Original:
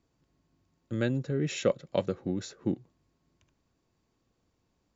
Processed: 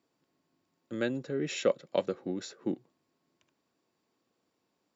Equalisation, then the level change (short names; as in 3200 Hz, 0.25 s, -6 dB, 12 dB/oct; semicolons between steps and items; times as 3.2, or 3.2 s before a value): HPF 250 Hz 12 dB/oct; notch 6400 Hz, Q 11; 0.0 dB